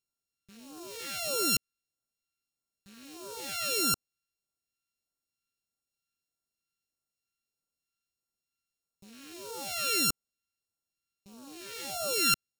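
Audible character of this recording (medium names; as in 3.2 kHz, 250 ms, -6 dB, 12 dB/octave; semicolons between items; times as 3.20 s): a buzz of ramps at a fixed pitch in blocks of 32 samples; phasing stages 2, 1.6 Hz, lowest notch 800–1900 Hz; AAC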